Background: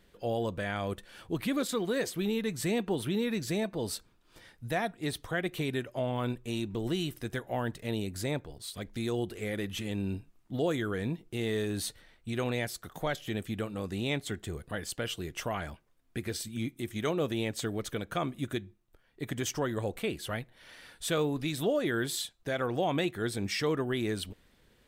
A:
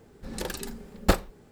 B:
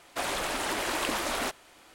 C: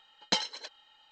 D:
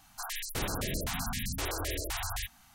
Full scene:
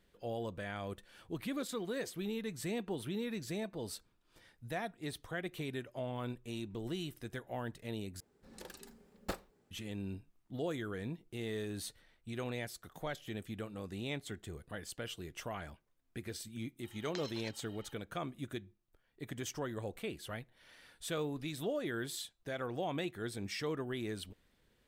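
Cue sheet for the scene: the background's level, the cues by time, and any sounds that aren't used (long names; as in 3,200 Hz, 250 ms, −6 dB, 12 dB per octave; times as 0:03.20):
background −8 dB
0:08.20: overwrite with A −16 dB + low-shelf EQ 120 Hz −9 dB
0:16.83: mix in C −0.5 dB + downward compressor, threshold −44 dBFS
not used: B, D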